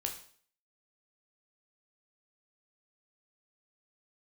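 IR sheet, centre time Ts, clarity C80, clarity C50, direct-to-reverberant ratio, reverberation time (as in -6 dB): 18 ms, 13.0 dB, 9.0 dB, 2.0 dB, 0.50 s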